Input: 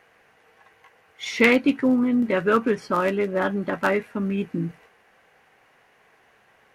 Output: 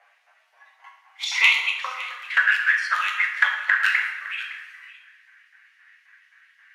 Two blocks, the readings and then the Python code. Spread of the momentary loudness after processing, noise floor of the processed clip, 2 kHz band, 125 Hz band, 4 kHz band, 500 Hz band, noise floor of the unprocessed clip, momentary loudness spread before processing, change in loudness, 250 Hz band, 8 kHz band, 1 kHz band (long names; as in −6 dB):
14 LU, −62 dBFS, +8.5 dB, below −40 dB, +9.0 dB, below −30 dB, −60 dBFS, 12 LU, +1.5 dB, below −40 dB, can't be measured, −2.0 dB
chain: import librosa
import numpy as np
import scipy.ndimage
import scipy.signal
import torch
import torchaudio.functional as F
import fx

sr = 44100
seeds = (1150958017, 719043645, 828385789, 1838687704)

y = fx.weighting(x, sr, curve='A')
y = fx.noise_reduce_blind(y, sr, reduce_db=7)
y = fx.filter_lfo_highpass(y, sr, shape='saw_up', hz=3.8, low_hz=780.0, high_hz=4900.0, q=1.2)
y = fx.env_flanger(y, sr, rest_ms=10.1, full_db=-24.0)
y = fx.filter_sweep_highpass(y, sr, from_hz=600.0, to_hz=1700.0, start_s=0.57, end_s=2.42, q=4.0)
y = y + 10.0 ** (-17.0 / 20.0) * np.pad(y, (int(561 * sr / 1000.0), 0))[:len(y)]
y = fx.rev_plate(y, sr, seeds[0], rt60_s=1.1, hf_ratio=0.75, predelay_ms=0, drr_db=1.5)
y = F.gain(torch.from_numpy(y), 4.5).numpy()